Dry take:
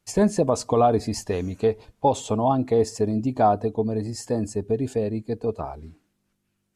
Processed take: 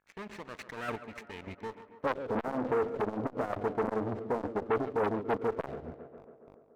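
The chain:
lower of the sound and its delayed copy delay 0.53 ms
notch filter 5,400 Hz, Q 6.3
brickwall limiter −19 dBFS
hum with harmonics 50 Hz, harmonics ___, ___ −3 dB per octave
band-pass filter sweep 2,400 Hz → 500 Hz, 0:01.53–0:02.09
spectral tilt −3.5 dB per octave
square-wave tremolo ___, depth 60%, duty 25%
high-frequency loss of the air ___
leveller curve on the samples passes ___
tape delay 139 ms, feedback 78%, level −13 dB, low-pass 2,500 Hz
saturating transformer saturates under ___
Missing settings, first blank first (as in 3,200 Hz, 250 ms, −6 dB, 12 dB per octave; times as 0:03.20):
34, −59 dBFS, 3.4 Hz, 95 metres, 3, 890 Hz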